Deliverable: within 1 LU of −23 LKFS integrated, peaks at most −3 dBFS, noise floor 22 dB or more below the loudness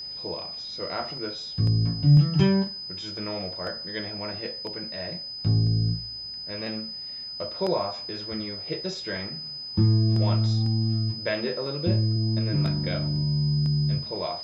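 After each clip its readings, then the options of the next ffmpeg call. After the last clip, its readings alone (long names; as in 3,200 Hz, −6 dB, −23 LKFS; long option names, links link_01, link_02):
interfering tone 5,000 Hz; level of the tone −34 dBFS; integrated loudness −26.5 LKFS; sample peak −8.5 dBFS; target loudness −23.0 LKFS
→ -af "bandreject=frequency=5000:width=30"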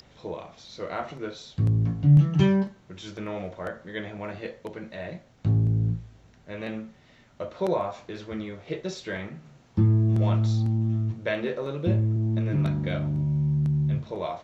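interfering tone none found; integrated loudness −26.0 LKFS; sample peak −8.5 dBFS; target loudness −23.0 LKFS
→ -af "volume=3dB"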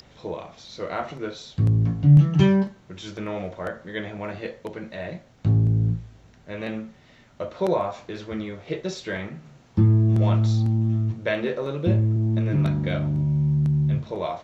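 integrated loudness −23.0 LKFS; sample peak −5.5 dBFS; background noise floor −54 dBFS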